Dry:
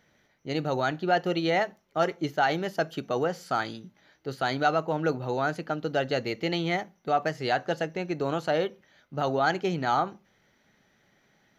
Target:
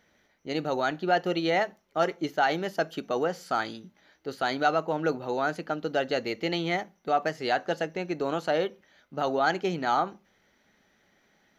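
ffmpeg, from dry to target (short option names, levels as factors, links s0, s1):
-af "equalizer=f=130:w=3.3:g=-11"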